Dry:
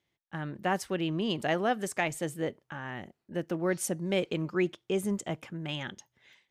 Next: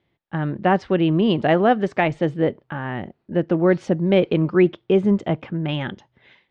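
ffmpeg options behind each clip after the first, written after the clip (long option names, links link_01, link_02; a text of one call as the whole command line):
ffmpeg -i in.wav -af "lowpass=frequency=4200:width=0.5412,lowpass=frequency=4200:width=1.3066,tiltshelf=frequency=1300:gain=4.5,volume=9dB" out.wav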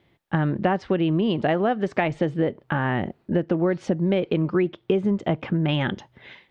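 ffmpeg -i in.wav -af "acompressor=threshold=-27dB:ratio=6,volume=7.5dB" out.wav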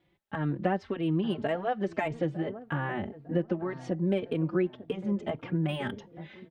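ffmpeg -i in.wav -filter_complex "[0:a]acrossover=split=2800[link_01][link_02];[link_01]asplit=2[link_03][link_04];[link_04]adelay=903,lowpass=frequency=1300:poles=1,volume=-14dB,asplit=2[link_05][link_06];[link_06]adelay=903,lowpass=frequency=1300:poles=1,volume=0.39,asplit=2[link_07][link_08];[link_08]adelay=903,lowpass=frequency=1300:poles=1,volume=0.39,asplit=2[link_09][link_10];[link_10]adelay=903,lowpass=frequency=1300:poles=1,volume=0.39[link_11];[link_03][link_05][link_07][link_09][link_11]amix=inputs=5:normalize=0[link_12];[link_02]asoftclip=type=hard:threshold=-35.5dB[link_13];[link_12][link_13]amix=inputs=2:normalize=0,asplit=2[link_14][link_15];[link_15]adelay=3.7,afreqshift=1.8[link_16];[link_14][link_16]amix=inputs=2:normalize=1,volume=-5dB" out.wav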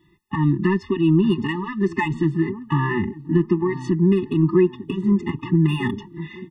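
ffmpeg -i in.wav -filter_complex "[0:a]asplit=2[link_01][link_02];[link_02]asoftclip=type=tanh:threshold=-23.5dB,volume=-3dB[link_03];[link_01][link_03]amix=inputs=2:normalize=0,afftfilt=real='re*eq(mod(floor(b*sr/1024/420),2),0)':imag='im*eq(mod(floor(b*sr/1024/420),2),0)':win_size=1024:overlap=0.75,volume=8dB" out.wav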